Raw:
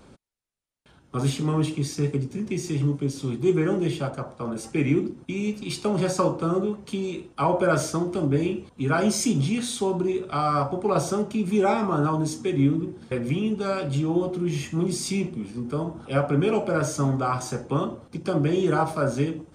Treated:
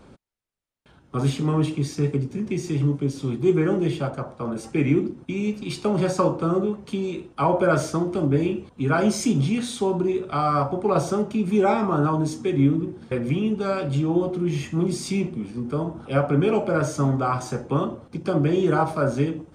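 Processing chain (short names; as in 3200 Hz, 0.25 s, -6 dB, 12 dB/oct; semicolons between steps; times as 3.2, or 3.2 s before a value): high shelf 4200 Hz -7 dB; gain +2 dB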